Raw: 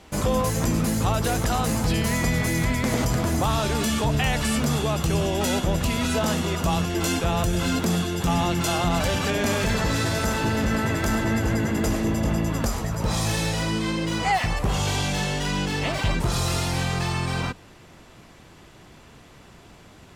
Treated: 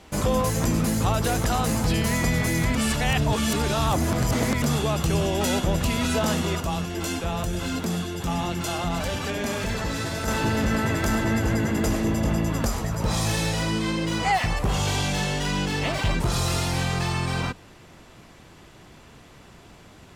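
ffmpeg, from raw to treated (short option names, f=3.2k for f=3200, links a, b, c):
-filter_complex "[0:a]asettb=1/sr,asplit=3[a][b][c];[a]atrim=end=6.604[d];[b]atrim=start=6.6:end=10.28,asetpts=PTS-STARTPTS,afade=t=in:d=0.004:c=qsin,afade=t=out:st=3.676:d=0.004:c=qsin,flanger=delay=2.3:depth=3.1:regen=-74:speed=1.9:shape=triangular[e];[c]atrim=start=10.276[f];[d][e]acrossfade=d=0.004:c1=hsin:c2=qsin[g];[g][f]acrossfade=d=0.004:c1=qsin:c2=hsin,asplit=3[h][i][j];[h]afade=t=out:st=14.61:d=0.02[k];[i]asoftclip=type=hard:threshold=-16.5dB,afade=t=in:st=14.61:d=0.02,afade=t=out:st=16.79:d=0.02[l];[j]afade=t=in:st=16.79:d=0.02[m];[k][l][m]amix=inputs=3:normalize=0,asplit=3[n][o][p];[n]atrim=end=2.752[q];[o]atrim=start=2.748:end=4.622,asetpts=PTS-STARTPTS,areverse[r];[p]atrim=start=4.618[s];[q][r]acrossfade=d=0.004:c1=hsin:c2=hsin[t];[t][s]acrossfade=d=0.004:c1=hsin:c2=hsin"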